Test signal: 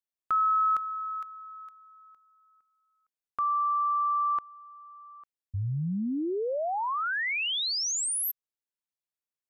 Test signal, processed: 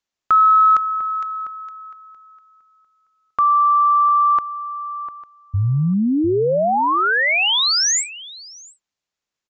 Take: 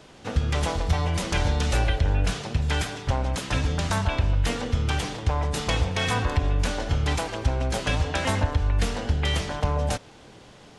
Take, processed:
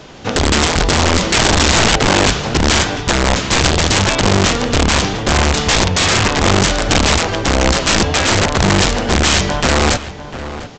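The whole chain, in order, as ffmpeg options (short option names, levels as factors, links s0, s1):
-filter_complex "[0:a]acontrast=47,aresample=16000,aeval=exprs='(mod(5.01*val(0)+1,2)-1)/5.01':c=same,aresample=44100,asplit=2[s0][s1];[s1]adelay=699.7,volume=0.251,highshelf=f=4000:g=-15.7[s2];[s0][s2]amix=inputs=2:normalize=0,volume=2.11"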